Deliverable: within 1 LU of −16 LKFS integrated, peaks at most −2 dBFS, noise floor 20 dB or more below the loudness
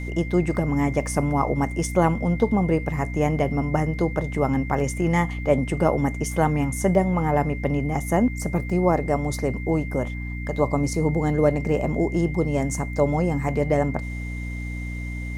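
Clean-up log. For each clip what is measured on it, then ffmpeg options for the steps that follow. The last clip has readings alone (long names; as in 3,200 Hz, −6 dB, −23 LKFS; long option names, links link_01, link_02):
mains hum 60 Hz; hum harmonics up to 300 Hz; level of the hum −28 dBFS; interfering tone 2,100 Hz; level of the tone −37 dBFS; integrated loudness −23.5 LKFS; sample peak −5.5 dBFS; target loudness −16.0 LKFS
→ -af "bandreject=frequency=60:width_type=h:width=4,bandreject=frequency=120:width_type=h:width=4,bandreject=frequency=180:width_type=h:width=4,bandreject=frequency=240:width_type=h:width=4,bandreject=frequency=300:width_type=h:width=4"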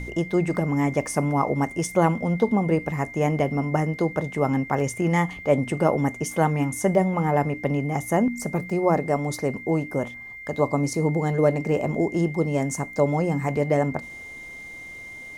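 mains hum none found; interfering tone 2,100 Hz; level of the tone −37 dBFS
→ -af "bandreject=frequency=2100:width=30"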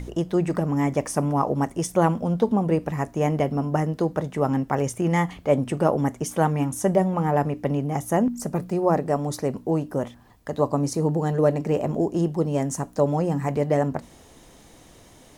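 interfering tone none found; integrated loudness −24.0 LKFS; sample peak −6.0 dBFS; target loudness −16.0 LKFS
→ -af "volume=8dB,alimiter=limit=-2dB:level=0:latency=1"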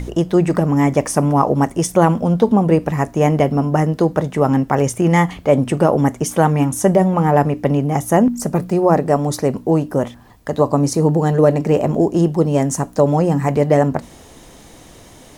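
integrated loudness −16.5 LKFS; sample peak −2.0 dBFS; background noise floor −43 dBFS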